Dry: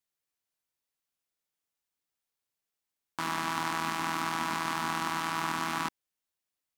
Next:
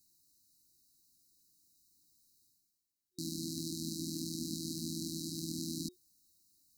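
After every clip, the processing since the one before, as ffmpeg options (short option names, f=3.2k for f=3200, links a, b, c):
-af "afftfilt=real='re*(1-between(b*sr/4096,360,3800))':imag='im*(1-between(b*sr/4096,360,3800))':win_size=4096:overlap=0.75,areverse,acompressor=mode=upward:threshold=-54dB:ratio=2.5,areverse"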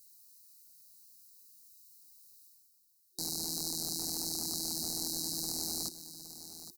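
-filter_complex "[0:a]acrossover=split=630[a][b];[a]aeval=exprs='0.01*(abs(mod(val(0)/0.01+3,4)-2)-1)':c=same[c];[b]aexciter=amount=2.2:drive=7.5:freq=4k[d];[c][d]amix=inputs=2:normalize=0,aecho=1:1:817:0.251,volume=-1.5dB"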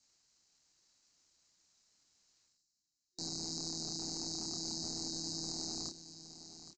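-filter_complex "[0:a]asplit=2[a][b];[b]adelay=30,volume=-4.5dB[c];[a][c]amix=inputs=2:normalize=0,asplit=2[d][e];[e]aeval=exprs='val(0)*gte(abs(val(0)),0.00237)':c=same,volume=-6.5dB[f];[d][f]amix=inputs=2:normalize=0,aresample=16000,aresample=44100,volume=-6.5dB"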